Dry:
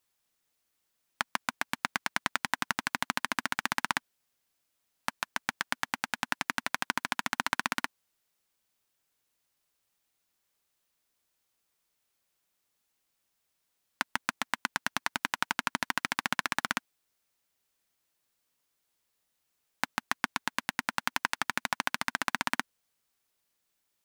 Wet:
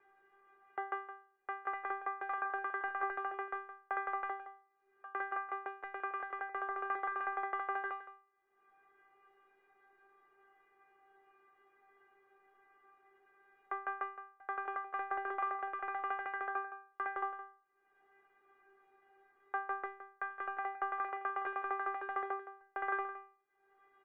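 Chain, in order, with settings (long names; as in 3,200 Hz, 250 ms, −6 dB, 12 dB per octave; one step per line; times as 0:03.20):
slices reordered back to front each 144 ms, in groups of 5
upward compression, threshold −31 dBFS
single-sideband voice off tune −300 Hz 530–2,100 Hz
stiff-string resonator 390 Hz, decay 0.43 s, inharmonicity 0.002
single-tap delay 166 ms −13 dB
level +13 dB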